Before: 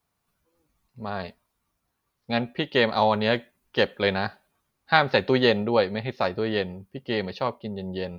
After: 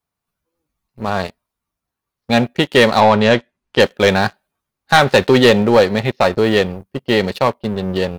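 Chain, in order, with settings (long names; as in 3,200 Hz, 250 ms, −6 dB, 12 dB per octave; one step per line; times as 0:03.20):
leveller curve on the samples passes 3
0:03.00–0:03.80: high-frequency loss of the air 65 metres
level +1 dB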